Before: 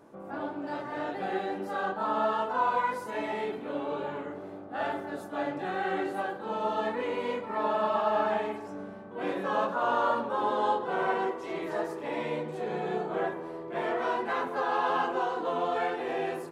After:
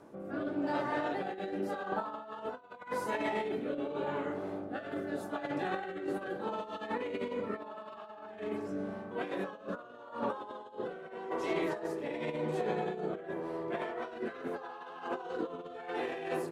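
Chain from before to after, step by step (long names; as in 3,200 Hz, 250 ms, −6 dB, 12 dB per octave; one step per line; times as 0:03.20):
compressor whose output falls as the input rises −34 dBFS, ratio −0.5
rotating-speaker cabinet horn 0.85 Hz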